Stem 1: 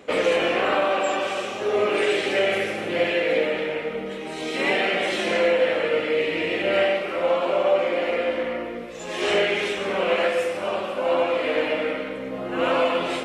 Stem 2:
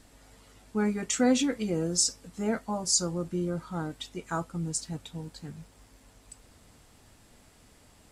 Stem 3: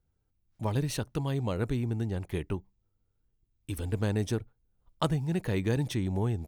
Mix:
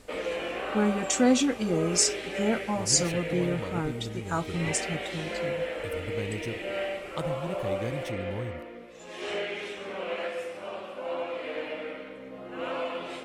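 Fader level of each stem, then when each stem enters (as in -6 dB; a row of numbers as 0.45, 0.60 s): -11.5, +2.0, -6.5 dB; 0.00, 0.00, 2.15 s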